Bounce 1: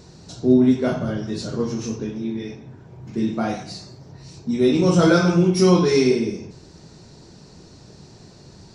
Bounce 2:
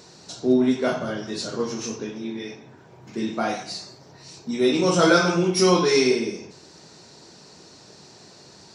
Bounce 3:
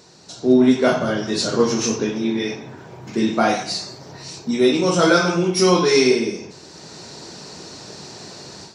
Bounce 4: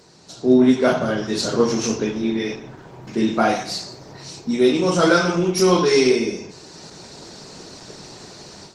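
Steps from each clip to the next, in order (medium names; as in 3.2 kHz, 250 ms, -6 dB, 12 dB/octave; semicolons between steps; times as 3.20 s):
high-pass 610 Hz 6 dB/octave; trim +3.5 dB
level rider gain up to 11.5 dB; trim -1 dB
Opus 20 kbps 48 kHz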